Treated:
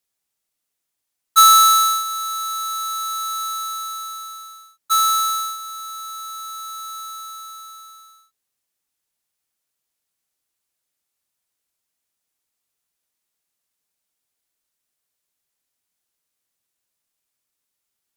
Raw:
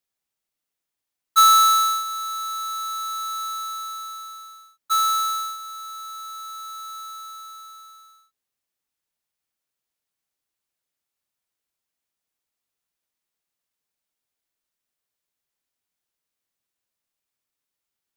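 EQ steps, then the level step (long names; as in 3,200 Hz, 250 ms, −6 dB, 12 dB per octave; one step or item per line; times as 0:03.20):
parametric band 10,000 Hz +5 dB 1.7 octaves
+2.5 dB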